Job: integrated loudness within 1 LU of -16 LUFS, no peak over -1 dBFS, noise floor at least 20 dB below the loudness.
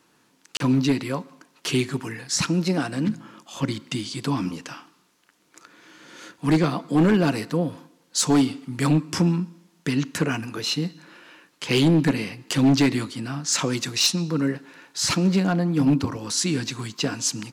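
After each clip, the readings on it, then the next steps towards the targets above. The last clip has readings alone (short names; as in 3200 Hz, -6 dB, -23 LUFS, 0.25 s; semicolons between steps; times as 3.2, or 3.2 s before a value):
clipped 1.0%; flat tops at -13.0 dBFS; dropouts 1; longest dropout 32 ms; loudness -23.5 LUFS; peak -13.0 dBFS; loudness target -16.0 LUFS
-> clip repair -13 dBFS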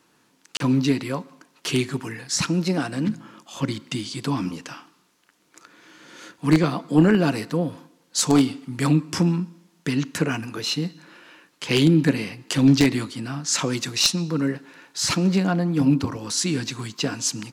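clipped 0.0%; dropouts 1; longest dropout 32 ms
-> interpolate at 0.57, 32 ms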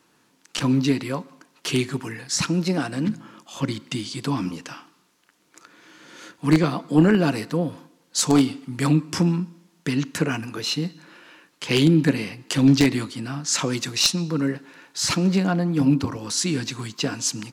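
dropouts 0; loudness -23.0 LUFS; peak -4.0 dBFS; loudness target -16.0 LUFS
-> gain +7 dB; limiter -1 dBFS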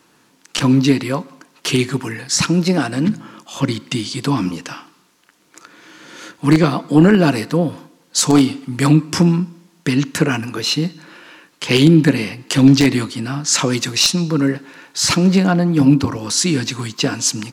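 loudness -16.5 LUFS; peak -1.0 dBFS; noise floor -56 dBFS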